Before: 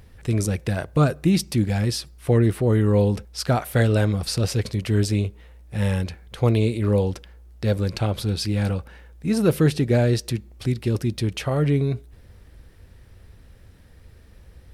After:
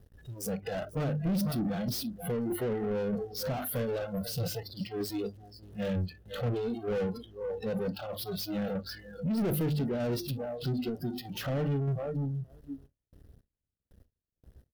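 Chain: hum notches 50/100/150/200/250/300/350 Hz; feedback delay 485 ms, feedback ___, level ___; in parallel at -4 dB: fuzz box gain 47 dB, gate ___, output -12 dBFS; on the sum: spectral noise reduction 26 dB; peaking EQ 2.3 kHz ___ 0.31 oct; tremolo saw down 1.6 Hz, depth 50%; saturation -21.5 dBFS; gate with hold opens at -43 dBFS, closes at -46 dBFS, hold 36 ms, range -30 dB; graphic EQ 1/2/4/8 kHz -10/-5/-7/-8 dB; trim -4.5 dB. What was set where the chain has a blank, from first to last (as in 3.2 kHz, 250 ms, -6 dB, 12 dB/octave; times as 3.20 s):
26%, -15.5 dB, -50 dBFS, -10.5 dB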